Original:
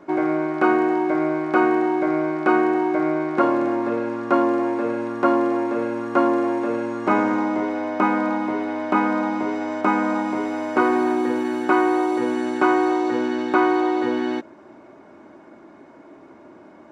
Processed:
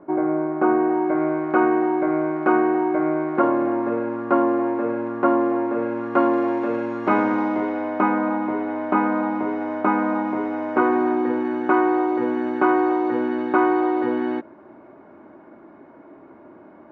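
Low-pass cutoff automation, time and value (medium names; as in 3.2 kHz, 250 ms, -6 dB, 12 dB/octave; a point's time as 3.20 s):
0.66 s 1.1 kHz
1.24 s 1.8 kHz
5.71 s 1.8 kHz
6.46 s 3.5 kHz
7.47 s 3.5 kHz
8.19 s 1.9 kHz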